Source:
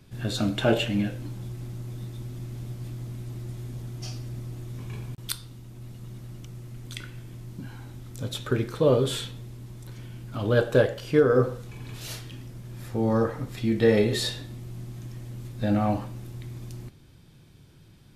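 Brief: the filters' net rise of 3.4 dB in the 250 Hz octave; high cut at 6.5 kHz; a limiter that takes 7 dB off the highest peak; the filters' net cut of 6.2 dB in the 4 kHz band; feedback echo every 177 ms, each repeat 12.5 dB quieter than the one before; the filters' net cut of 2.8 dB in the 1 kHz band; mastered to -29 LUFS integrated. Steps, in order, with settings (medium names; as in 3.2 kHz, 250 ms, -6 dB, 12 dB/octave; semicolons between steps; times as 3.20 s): low-pass 6.5 kHz; peaking EQ 250 Hz +4.5 dB; peaking EQ 1 kHz -4 dB; peaking EQ 4 kHz -7 dB; peak limiter -14 dBFS; feedback delay 177 ms, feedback 24%, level -12.5 dB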